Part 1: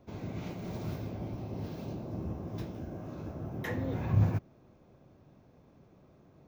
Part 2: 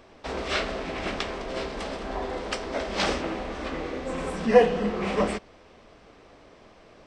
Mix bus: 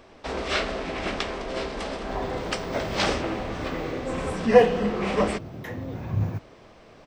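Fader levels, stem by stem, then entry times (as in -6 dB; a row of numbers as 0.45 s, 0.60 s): 0.0 dB, +1.5 dB; 2.00 s, 0.00 s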